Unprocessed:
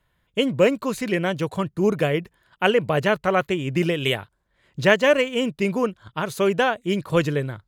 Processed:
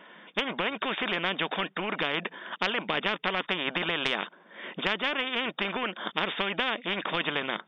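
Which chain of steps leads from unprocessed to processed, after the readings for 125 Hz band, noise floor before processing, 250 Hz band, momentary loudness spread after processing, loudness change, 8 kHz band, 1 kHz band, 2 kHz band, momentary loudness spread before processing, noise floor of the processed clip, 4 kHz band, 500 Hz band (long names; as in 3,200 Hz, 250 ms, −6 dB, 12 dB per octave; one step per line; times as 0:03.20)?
−16.5 dB, −70 dBFS, −12.0 dB, 4 LU, −7.0 dB, below −15 dB, −4.5 dB, −3.0 dB, 8 LU, −58 dBFS, +0.5 dB, −13.5 dB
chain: linear-phase brick-wall band-pass 180–3,700 Hz
downward compressor 6 to 1, threshold −22 dBFS, peak gain reduction 11 dB
every bin compressed towards the loudest bin 4 to 1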